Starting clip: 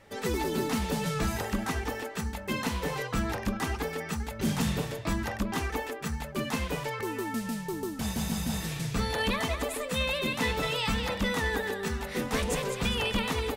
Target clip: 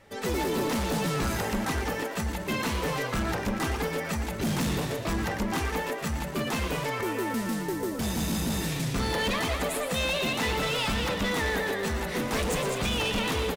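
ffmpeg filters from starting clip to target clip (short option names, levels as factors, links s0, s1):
-filter_complex "[0:a]dynaudnorm=f=150:g=3:m=1.5,volume=17.8,asoftclip=hard,volume=0.0562,asplit=7[s0][s1][s2][s3][s4][s5][s6];[s1]adelay=116,afreqshift=110,volume=0.316[s7];[s2]adelay=232,afreqshift=220,volume=0.174[s8];[s3]adelay=348,afreqshift=330,volume=0.0955[s9];[s4]adelay=464,afreqshift=440,volume=0.0525[s10];[s5]adelay=580,afreqshift=550,volume=0.0288[s11];[s6]adelay=696,afreqshift=660,volume=0.0158[s12];[s0][s7][s8][s9][s10][s11][s12]amix=inputs=7:normalize=0"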